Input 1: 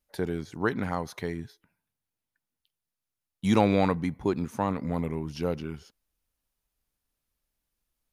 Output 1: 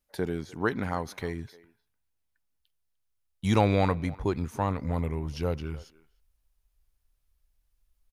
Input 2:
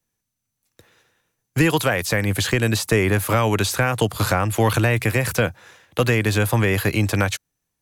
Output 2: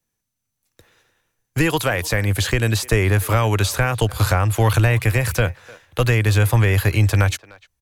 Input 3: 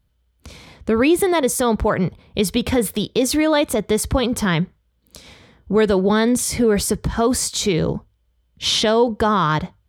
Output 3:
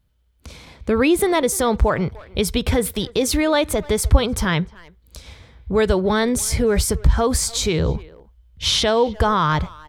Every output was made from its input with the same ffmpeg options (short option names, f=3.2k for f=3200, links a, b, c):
-filter_complex "[0:a]asplit=2[a][b];[b]adelay=300,highpass=300,lowpass=3.4k,asoftclip=type=hard:threshold=-14.5dB,volume=-20dB[c];[a][c]amix=inputs=2:normalize=0,asubboost=boost=7:cutoff=77"